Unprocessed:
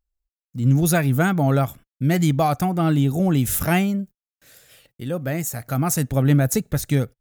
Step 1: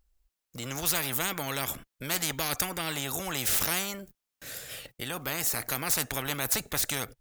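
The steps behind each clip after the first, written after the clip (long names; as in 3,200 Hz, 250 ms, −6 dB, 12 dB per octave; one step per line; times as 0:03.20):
every bin compressed towards the loudest bin 4 to 1
level −5 dB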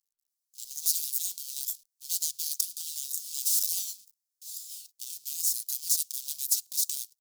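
each half-wave held at its own peak
inverse Chebyshev high-pass filter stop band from 1,900 Hz, stop band 50 dB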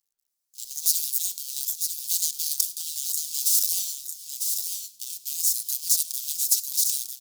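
single-tap delay 949 ms −6 dB
on a send at −17.5 dB: convolution reverb RT60 0.65 s, pre-delay 40 ms
on the sum: level +4.5 dB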